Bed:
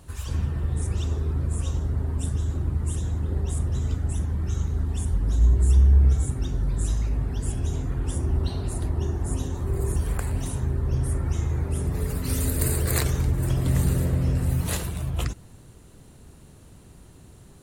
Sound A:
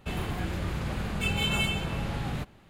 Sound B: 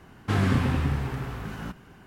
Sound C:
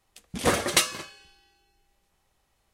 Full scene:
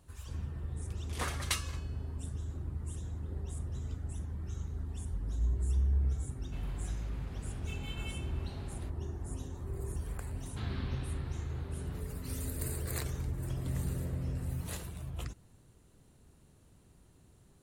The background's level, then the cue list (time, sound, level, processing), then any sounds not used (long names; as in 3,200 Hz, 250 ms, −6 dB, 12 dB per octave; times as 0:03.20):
bed −13 dB
0:00.74: mix in C −12.5 dB + low shelf with overshoot 740 Hz −6 dB, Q 1.5
0:06.46: mix in A −17.5 dB
0:10.28: mix in B −8 dB + transistor ladder low-pass 4,500 Hz, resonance 65%